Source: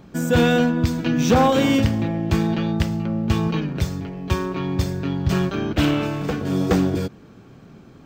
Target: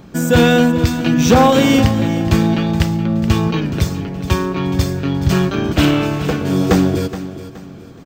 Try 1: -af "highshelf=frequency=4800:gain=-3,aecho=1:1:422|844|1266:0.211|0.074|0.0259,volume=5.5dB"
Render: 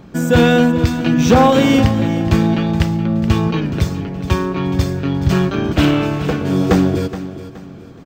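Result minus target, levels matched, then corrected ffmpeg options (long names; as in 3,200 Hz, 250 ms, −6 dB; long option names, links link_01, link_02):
8,000 Hz band −4.0 dB
-af "highshelf=frequency=4800:gain=3.5,aecho=1:1:422|844|1266:0.211|0.074|0.0259,volume=5.5dB"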